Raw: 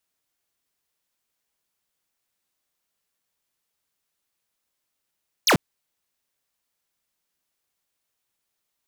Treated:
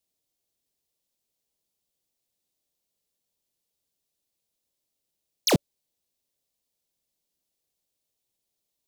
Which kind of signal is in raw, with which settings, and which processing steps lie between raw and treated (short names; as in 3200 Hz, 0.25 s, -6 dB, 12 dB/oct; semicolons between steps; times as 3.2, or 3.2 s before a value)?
laser zap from 7000 Hz, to 110 Hz, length 0.09 s square, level -16.5 dB
EQ curve 570 Hz 0 dB, 1400 Hz -15 dB, 3800 Hz -2 dB